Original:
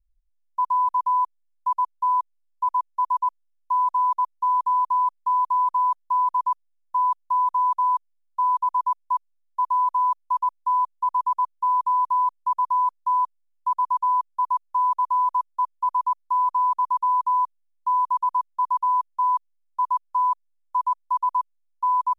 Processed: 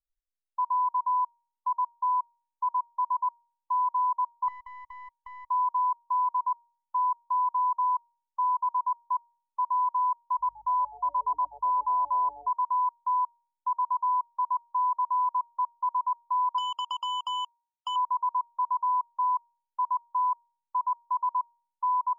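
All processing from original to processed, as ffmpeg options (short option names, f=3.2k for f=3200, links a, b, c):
-filter_complex "[0:a]asettb=1/sr,asplit=3[a][b][c];[a]atrim=end=4.484[d];[b]atrim=start=4.48:end=5.46,asetpts=PTS-STARTPTS,afade=t=in:d=0.004:c=qsin,afade=t=out:st=0.976:d=0.004:c=qsin,aeval=exprs='clip(val(0),-1,0.0266)':c=same,acompressor=threshold=-35dB:ratio=10:attack=3.2:release=140:knee=1:detection=peak[e];[c]atrim=start=5.456[f];[d][e]acrossfade=d=0.004:c1=hsin:c2=qsin[g];[g][f]acrossfade=d=0.004:c1=qsin:c2=hsin,asettb=1/sr,asplit=3[h][i][j];[h]atrim=end=10.394[k];[i]atrim=start=10.39:end=12.49,asetpts=PTS-STARTPTS,afade=t=in:d=0.004:c=qsin,afade=t=out:st=2.096:d=0.004:c=qsin,aeval=exprs='val(0)+0.00224*(sin(2*PI*50*n/s)+sin(2*PI*2*50*n/s)/2+sin(2*PI*3*50*n/s)/3+sin(2*PI*4*50*n/s)/4+sin(2*PI*5*50*n/s)/5)':c=same,asplit=6[l][m][n][o][p][q];[m]adelay=126,afreqshift=-140,volume=-21dB[r];[n]adelay=252,afreqshift=-280,volume=-25.2dB[s];[o]adelay=378,afreqshift=-420,volume=-29.3dB[t];[p]adelay=504,afreqshift=-560,volume=-33.5dB[u];[q]adelay=630,afreqshift=-700,volume=-37.6dB[v];[l][r][s][t][u][v]amix=inputs=6:normalize=0,atrim=end_sample=92610[w];[j]atrim=start=12.486[x];[k][w]acrossfade=d=0.004:c1=hsin:c2=qsin[y];[y][x]acrossfade=d=0.004:c1=qsin:c2=hsin,asettb=1/sr,asplit=3[z][aa][ab];[z]atrim=end=16.584[ac];[aa]atrim=start=16.58:end=17.96,asetpts=PTS-STARTPTS,afade=t=in:d=0.004:c=qsin,afade=t=out:st=1.376:d=0.004:c=qsin,acompressor=threshold=-25dB:ratio=3:attack=3.2:release=140:knee=1:detection=peak,acrusher=bits=3:mix=0:aa=0.5[ad];[ab]atrim=start=17.956[ae];[ac][ad]acrossfade=d=0.004:c1=hsin:c2=qsin[af];[af][ae]acrossfade=d=0.004:c1=qsin:c2=hsin,afftdn=nr=16:nf=-42,lowshelf=f=440:g=-5.5,bandreject=f=314.5:t=h:w=4,bandreject=f=629:t=h:w=4,bandreject=f=943.5:t=h:w=4,volume=-4dB"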